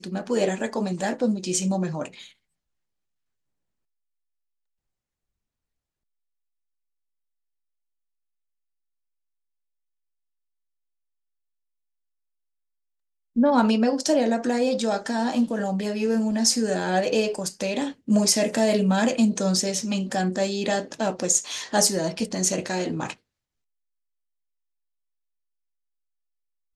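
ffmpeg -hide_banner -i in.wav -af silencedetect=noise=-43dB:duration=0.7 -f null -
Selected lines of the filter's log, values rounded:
silence_start: 2.29
silence_end: 13.36 | silence_duration: 11.07
silence_start: 23.14
silence_end: 26.75 | silence_duration: 3.61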